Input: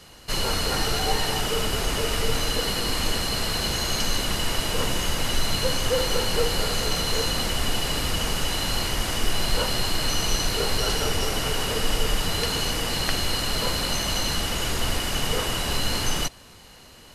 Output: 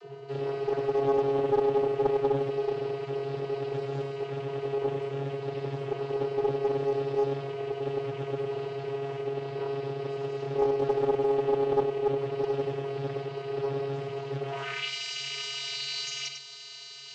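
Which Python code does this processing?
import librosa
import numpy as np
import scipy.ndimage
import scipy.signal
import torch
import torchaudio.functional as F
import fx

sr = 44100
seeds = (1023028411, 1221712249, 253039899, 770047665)

p1 = fx.rattle_buzz(x, sr, strikes_db=-28.0, level_db=-15.0)
p2 = fx.high_shelf(p1, sr, hz=2500.0, db=8.0)
p3 = fx.over_compress(p2, sr, threshold_db=-32.0, ratio=-1.0)
p4 = p2 + (p3 * librosa.db_to_amplitude(2.0))
p5 = fx.filter_sweep_bandpass(p4, sr, from_hz=400.0, to_hz=4600.0, start_s=14.41, end_s=14.92, q=1.7)
p6 = fx.vocoder(p5, sr, bands=32, carrier='square', carrier_hz=138.0)
p7 = fx.hum_notches(p6, sr, base_hz=50, count=3)
p8 = p7 + fx.echo_single(p7, sr, ms=99, db=-7.0, dry=0)
y = fx.doppler_dist(p8, sr, depth_ms=0.49)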